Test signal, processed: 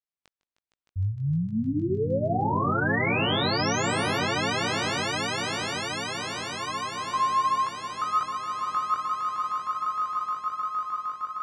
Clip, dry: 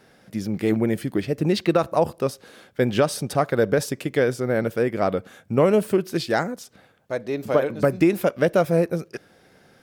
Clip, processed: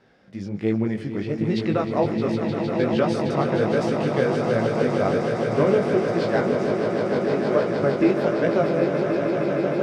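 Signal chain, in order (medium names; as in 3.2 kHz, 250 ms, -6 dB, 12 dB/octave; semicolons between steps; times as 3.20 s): distance through air 120 m; echo with a slow build-up 154 ms, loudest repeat 8, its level -9 dB; chorus 1.3 Hz, delay 17.5 ms, depth 3.6 ms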